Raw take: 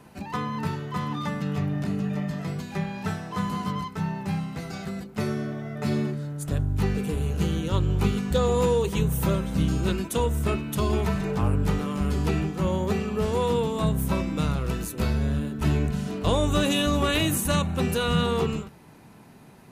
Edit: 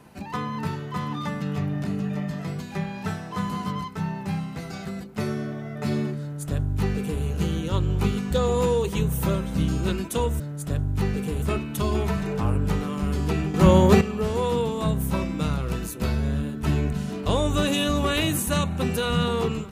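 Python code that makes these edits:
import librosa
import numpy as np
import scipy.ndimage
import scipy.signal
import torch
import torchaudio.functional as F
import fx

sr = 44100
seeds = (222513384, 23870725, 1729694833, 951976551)

y = fx.edit(x, sr, fx.duplicate(start_s=6.21, length_s=1.02, to_s=10.4),
    fx.clip_gain(start_s=12.52, length_s=0.47, db=10.0), tone=tone)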